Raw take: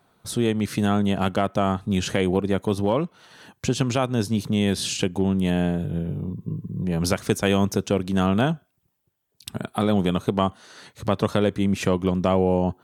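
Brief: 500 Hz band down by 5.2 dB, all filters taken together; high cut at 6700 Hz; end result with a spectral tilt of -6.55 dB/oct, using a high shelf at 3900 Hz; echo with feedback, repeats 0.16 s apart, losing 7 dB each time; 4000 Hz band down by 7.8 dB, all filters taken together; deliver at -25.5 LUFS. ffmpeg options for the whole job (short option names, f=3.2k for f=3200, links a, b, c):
-af "lowpass=6.7k,equalizer=f=500:t=o:g=-6.5,highshelf=f=3.9k:g=-3,equalizer=f=4k:t=o:g=-8.5,aecho=1:1:160|320|480|640|800:0.447|0.201|0.0905|0.0407|0.0183,volume=-0.5dB"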